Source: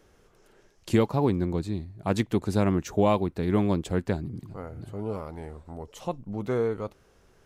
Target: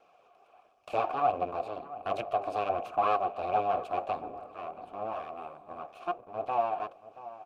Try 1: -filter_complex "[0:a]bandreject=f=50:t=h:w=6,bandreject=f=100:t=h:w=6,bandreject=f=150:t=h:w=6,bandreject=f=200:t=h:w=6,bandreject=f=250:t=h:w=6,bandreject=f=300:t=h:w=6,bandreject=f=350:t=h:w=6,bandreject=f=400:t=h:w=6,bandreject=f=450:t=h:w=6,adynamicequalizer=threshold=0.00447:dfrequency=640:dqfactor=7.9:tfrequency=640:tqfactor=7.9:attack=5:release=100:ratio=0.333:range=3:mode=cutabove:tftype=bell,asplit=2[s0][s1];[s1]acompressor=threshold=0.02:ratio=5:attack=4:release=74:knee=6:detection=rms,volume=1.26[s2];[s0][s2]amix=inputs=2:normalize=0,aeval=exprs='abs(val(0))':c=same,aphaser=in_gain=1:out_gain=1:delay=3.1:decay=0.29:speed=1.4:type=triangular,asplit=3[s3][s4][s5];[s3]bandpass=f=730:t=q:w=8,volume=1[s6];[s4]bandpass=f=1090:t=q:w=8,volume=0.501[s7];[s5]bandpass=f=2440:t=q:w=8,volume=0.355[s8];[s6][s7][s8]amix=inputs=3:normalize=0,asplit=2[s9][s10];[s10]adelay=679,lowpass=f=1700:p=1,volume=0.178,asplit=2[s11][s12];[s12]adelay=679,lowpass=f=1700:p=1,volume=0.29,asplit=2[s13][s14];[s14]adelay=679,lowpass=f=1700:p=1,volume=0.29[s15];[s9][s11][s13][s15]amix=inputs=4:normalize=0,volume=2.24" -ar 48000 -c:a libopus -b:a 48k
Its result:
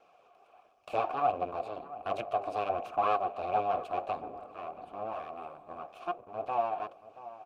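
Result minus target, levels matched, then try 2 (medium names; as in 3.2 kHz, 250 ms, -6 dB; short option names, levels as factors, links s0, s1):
compression: peak gain reduction +5 dB
-filter_complex "[0:a]bandreject=f=50:t=h:w=6,bandreject=f=100:t=h:w=6,bandreject=f=150:t=h:w=6,bandreject=f=200:t=h:w=6,bandreject=f=250:t=h:w=6,bandreject=f=300:t=h:w=6,bandreject=f=350:t=h:w=6,bandreject=f=400:t=h:w=6,bandreject=f=450:t=h:w=6,adynamicequalizer=threshold=0.00447:dfrequency=640:dqfactor=7.9:tfrequency=640:tqfactor=7.9:attack=5:release=100:ratio=0.333:range=3:mode=cutabove:tftype=bell,asplit=2[s0][s1];[s1]acompressor=threshold=0.0422:ratio=5:attack=4:release=74:knee=6:detection=rms,volume=1.26[s2];[s0][s2]amix=inputs=2:normalize=0,aeval=exprs='abs(val(0))':c=same,aphaser=in_gain=1:out_gain=1:delay=3.1:decay=0.29:speed=1.4:type=triangular,asplit=3[s3][s4][s5];[s3]bandpass=f=730:t=q:w=8,volume=1[s6];[s4]bandpass=f=1090:t=q:w=8,volume=0.501[s7];[s5]bandpass=f=2440:t=q:w=8,volume=0.355[s8];[s6][s7][s8]amix=inputs=3:normalize=0,asplit=2[s9][s10];[s10]adelay=679,lowpass=f=1700:p=1,volume=0.178,asplit=2[s11][s12];[s12]adelay=679,lowpass=f=1700:p=1,volume=0.29,asplit=2[s13][s14];[s14]adelay=679,lowpass=f=1700:p=1,volume=0.29[s15];[s9][s11][s13][s15]amix=inputs=4:normalize=0,volume=2.24" -ar 48000 -c:a libopus -b:a 48k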